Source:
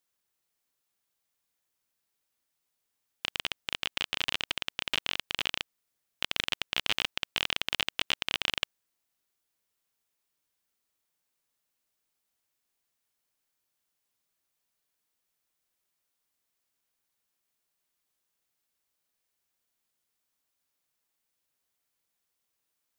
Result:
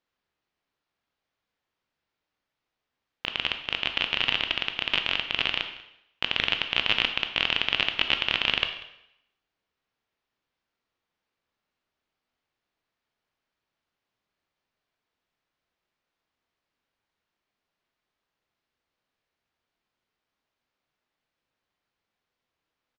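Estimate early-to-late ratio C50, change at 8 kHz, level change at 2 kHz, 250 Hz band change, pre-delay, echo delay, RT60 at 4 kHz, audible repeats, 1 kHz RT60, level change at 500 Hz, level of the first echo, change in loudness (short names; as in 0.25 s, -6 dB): 9.0 dB, n/a, +6.5 dB, +6.0 dB, 14 ms, 0.191 s, 0.75 s, 1, 0.80 s, +5.5 dB, -21.0 dB, +6.0 dB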